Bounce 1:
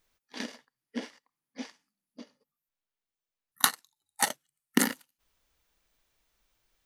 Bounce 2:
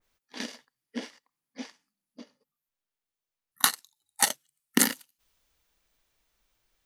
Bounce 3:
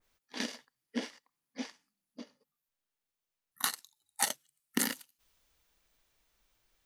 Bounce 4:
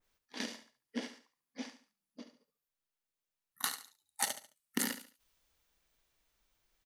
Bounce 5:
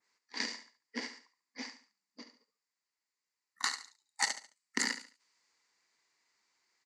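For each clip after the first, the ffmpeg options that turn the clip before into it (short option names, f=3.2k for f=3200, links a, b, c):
-af "adynamicequalizer=threshold=0.00631:dfrequency=2400:dqfactor=0.7:tfrequency=2400:tqfactor=0.7:attack=5:release=100:ratio=0.375:range=3.5:mode=boostabove:tftype=highshelf"
-af "alimiter=limit=-12.5dB:level=0:latency=1:release=159"
-af "aecho=1:1:71|142|213:0.266|0.0825|0.0256,volume=-3.5dB"
-af "highpass=260,equalizer=f=600:t=q:w=4:g=-7,equalizer=f=1k:t=q:w=4:g=6,equalizer=f=2k:t=q:w=4:g=10,equalizer=f=3.3k:t=q:w=4:g=-7,equalizer=f=4.7k:t=q:w=4:g=10,equalizer=f=7.3k:t=q:w=4:g=8,lowpass=f=7.5k:w=0.5412,lowpass=f=7.5k:w=1.3066"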